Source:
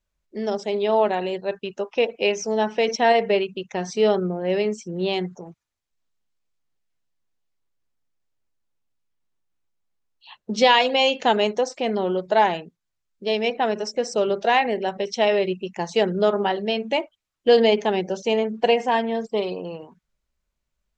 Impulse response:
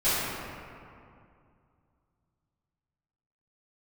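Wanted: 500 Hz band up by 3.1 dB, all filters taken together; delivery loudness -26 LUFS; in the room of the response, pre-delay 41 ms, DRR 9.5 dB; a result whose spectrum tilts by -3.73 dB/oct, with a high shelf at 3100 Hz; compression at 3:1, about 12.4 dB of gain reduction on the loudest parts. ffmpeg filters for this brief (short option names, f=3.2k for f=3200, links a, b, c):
-filter_complex "[0:a]equalizer=f=500:t=o:g=3.5,highshelf=f=3.1k:g=7.5,acompressor=threshold=-25dB:ratio=3,asplit=2[a][b];[1:a]atrim=start_sample=2205,adelay=41[c];[b][c]afir=irnorm=-1:irlink=0,volume=-24.5dB[d];[a][d]amix=inputs=2:normalize=0,volume=1dB"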